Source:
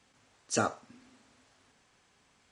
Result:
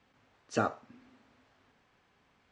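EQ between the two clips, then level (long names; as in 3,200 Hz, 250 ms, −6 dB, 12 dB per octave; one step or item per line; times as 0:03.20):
Bessel low-pass filter 2,700 Hz, order 2
0.0 dB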